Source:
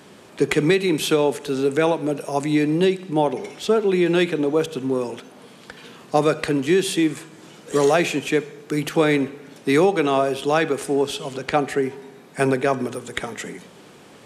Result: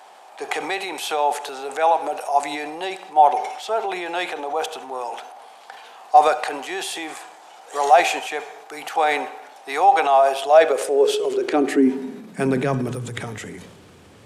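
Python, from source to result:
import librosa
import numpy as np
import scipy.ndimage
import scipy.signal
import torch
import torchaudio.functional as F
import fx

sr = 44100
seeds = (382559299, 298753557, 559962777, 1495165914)

y = fx.dmg_noise_colour(x, sr, seeds[0], colour='brown', level_db=-55.0)
y = fx.filter_sweep_highpass(y, sr, from_hz=770.0, to_hz=85.0, start_s=10.32, end_s=13.59, q=7.6)
y = fx.transient(y, sr, attack_db=-2, sustain_db=6)
y = y * 10.0 ** (-3.5 / 20.0)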